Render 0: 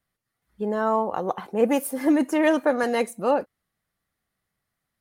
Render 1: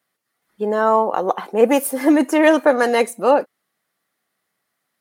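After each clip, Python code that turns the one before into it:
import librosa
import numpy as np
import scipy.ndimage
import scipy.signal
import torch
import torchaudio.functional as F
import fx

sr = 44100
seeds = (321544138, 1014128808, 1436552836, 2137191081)

y = scipy.signal.sosfilt(scipy.signal.butter(2, 270.0, 'highpass', fs=sr, output='sos'), x)
y = F.gain(torch.from_numpy(y), 7.5).numpy()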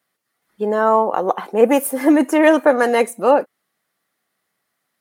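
y = fx.dynamic_eq(x, sr, hz=4600.0, q=1.3, threshold_db=-40.0, ratio=4.0, max_db=-6)
y = F.gain(torch.from_numpy(y), 1.0).numpy()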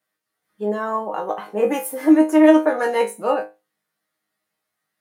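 y = fx.resonator_bank(x, sr, root=44, chord='fifth', decay_s=0.25)
y = F.gain(torch.from_numpy(y), 6.0).numpy()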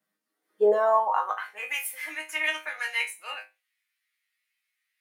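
y = fx.filter_sweep_highpass(x, sr, from_hz=190.0, to_hz=2300.0, start_s=0.1, end_s=1.68, q=3.9)
y = F.gain(torch.from_numpy(y), -4.0).numpy()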